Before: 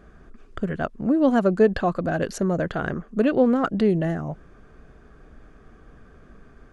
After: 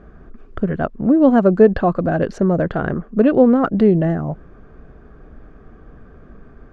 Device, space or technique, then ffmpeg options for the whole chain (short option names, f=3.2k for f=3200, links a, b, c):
through cloth: -af "lowpass=6.4k,highshelf=f=2.2k:g=-13.5,volume=7dB"